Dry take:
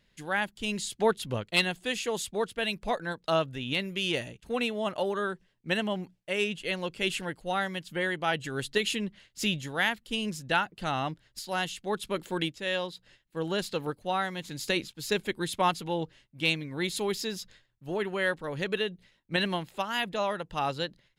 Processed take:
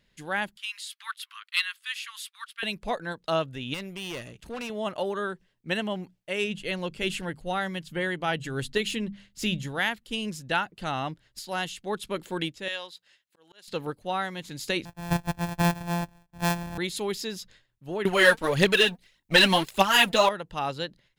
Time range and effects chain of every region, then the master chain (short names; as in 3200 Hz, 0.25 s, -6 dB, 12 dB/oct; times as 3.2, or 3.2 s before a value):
0.57–2.63 steep high-pass 1100 Hz 72 dB/oct + bell 7000 Hz -8.5 dB 0.61 oct
3.74–4.7 upward compressor, threshold -33 dBFS + tube stage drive 31 dB, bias 0.7
6.44–9.79 notches 50/100/150/200/250 Hz + de-esser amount 65% + low shelf 150 Hz +9 dB
12.68–13.68 HPF 1400 Hz 6 dB/oct + auto swell 0.528 s
14.85–16.78 sample sorter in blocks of 256 samples + bell 5600 Hz -5.5 dB 2.7 oct + comb 1.2 ms, depth 95%
18.05–20.29 high shelf 2900 Hz +8.5 dB + sample leveller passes 2 + phaser 1.7 Hz, delay 4.6 ms, feedback 59%
whole clip: dry